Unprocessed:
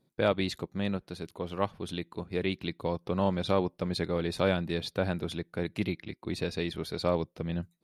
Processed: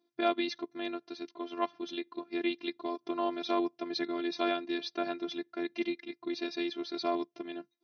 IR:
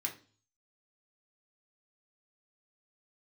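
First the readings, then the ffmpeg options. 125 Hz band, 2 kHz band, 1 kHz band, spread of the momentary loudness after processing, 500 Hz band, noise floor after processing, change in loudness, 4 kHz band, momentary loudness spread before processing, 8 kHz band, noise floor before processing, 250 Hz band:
under -25 dB, -2.0 dB, +0.5 dB, 8 LU, -4.5 dB, -78 dBFS, -3.0 dB, -1.0 dB, 9 LU, n/a, -73 dBFS, -2.0 dB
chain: -af "afftfilt=real='hypot(re,im)*cos(PI*b)':imag='0':win_size=512:overlap=0.75,afftfilt=real='re*between(b*sr/4096,130,6400)':imag='im*between(b*sr/4096,130,6400)':win_size=4096:overlap=0.75,volume=2dB"

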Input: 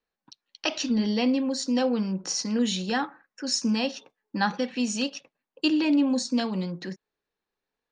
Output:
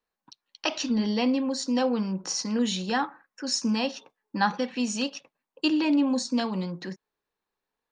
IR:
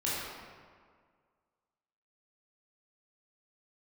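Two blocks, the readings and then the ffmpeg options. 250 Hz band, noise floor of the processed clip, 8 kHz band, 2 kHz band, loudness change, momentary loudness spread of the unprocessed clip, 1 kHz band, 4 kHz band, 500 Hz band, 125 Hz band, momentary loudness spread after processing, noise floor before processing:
-1.0 dB, under -85 dBFS, -1.0 dB, -0.5 dB, -0.5 dB, 13 LU, +2.0 dB, -1.0 dB, -0.5 dB, -1.0 dB, 12 LU, under -85 dBFS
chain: -af "equalizer=f=1k:t=o:w=0.72:g=5,volume=-1dB"

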